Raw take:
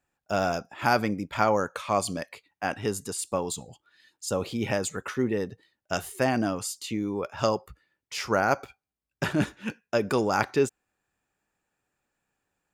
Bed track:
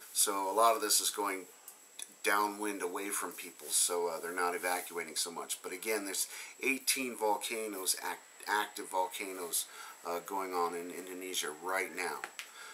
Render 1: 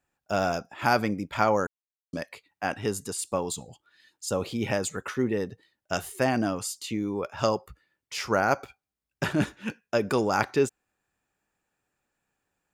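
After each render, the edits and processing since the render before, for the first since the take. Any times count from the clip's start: 1.67–2.13 s: mute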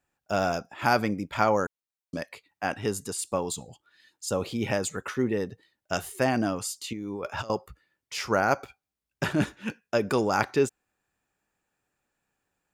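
6.93–7.50 s: compressor with a negative ratio -35 dBFS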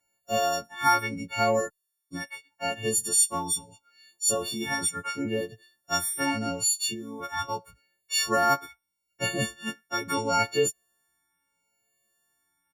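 partials quantised in pitch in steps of 4 st; endless flanger 7.2 ms +0.77 Hz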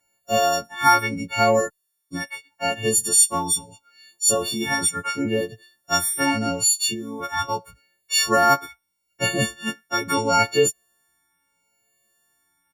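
trim +6 dB

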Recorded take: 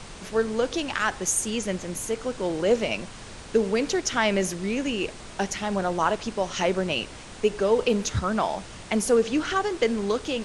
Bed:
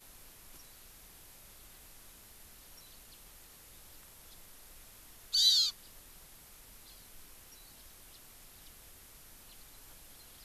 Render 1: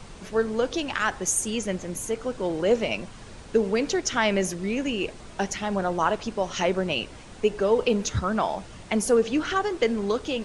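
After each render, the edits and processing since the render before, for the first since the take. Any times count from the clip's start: noise reduction 6 dB, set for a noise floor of -42 dBFS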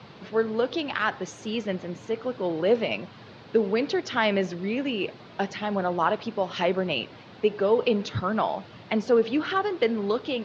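elliptic band-pass 110–4300 Hz, stop band 40 dB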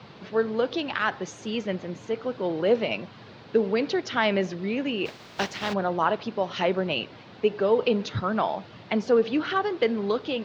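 5.05–5.72 s: spectral contrast reduction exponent 0.54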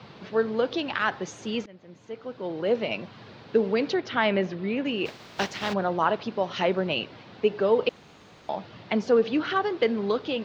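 1.66–3.15 s: fade in, from -23.5 dB; 3.94–4.85 s: low-pass 3.9 kHz; 7.89–8.49 s: room tone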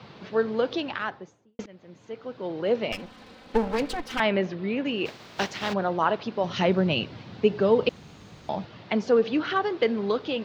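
0.70–1.59 s: studio fade out; 2.92–4.20 s: comb filter that takes the minimum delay 3.9 ms; 6.44–8.65 s: tone controls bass +10 dB, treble +4 dB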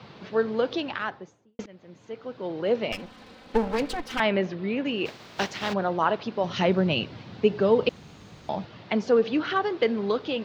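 no audible change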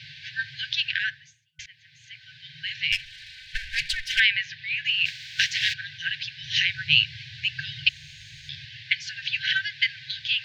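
FFT band-reject 160–1500 Hz; peaking EQ 3.2 kHz +11.5 dB 2.8 oct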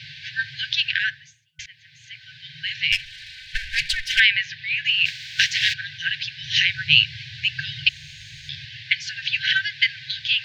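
trim +4 dB; peak limiter -2 dBFS, peak gain reduction 2 dB

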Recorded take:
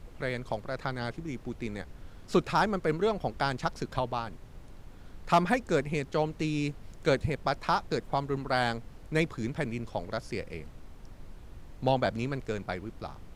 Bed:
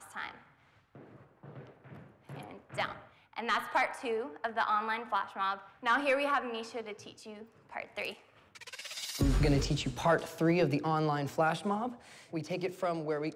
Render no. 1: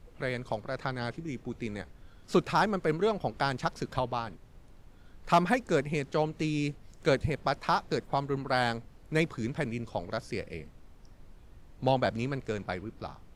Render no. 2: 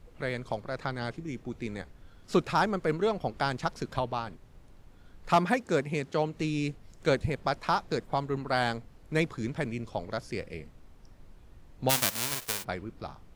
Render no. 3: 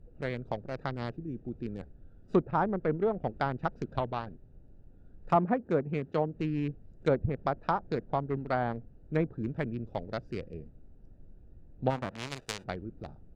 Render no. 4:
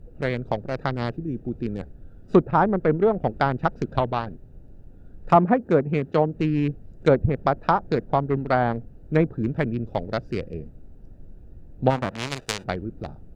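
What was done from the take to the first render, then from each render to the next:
noise print and reduce 6 dB
5.35–6.34 s: high-pass 88 Hz; 11.89–12.63 s: formants flattened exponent 0.1
local Wiener filter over 41 samples; low-pass that closes with the level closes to 1.1 kHz, closed at -24 dBFS
trim +9 dB

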